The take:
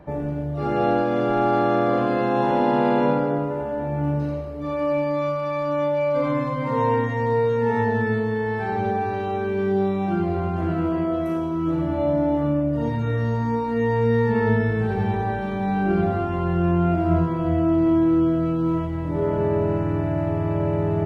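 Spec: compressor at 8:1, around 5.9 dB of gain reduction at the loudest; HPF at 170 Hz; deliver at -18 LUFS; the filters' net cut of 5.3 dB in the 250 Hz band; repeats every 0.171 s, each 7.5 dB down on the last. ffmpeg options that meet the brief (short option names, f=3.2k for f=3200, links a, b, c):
-af "highpass=170,equalizer=f=250:t=o:g=-6.5,acompressor=threshold=-24dB:ratio=8,aecho=1:1:171|342|513|684|855:0.422|0.177|0.0744|0.0312|0.0131,volume=9.5dB"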